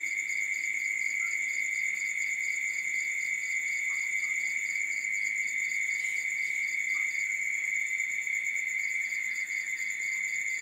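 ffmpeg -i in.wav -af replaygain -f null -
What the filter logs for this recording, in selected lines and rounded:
track_gain = +12.9 dB
track_peak = 0.080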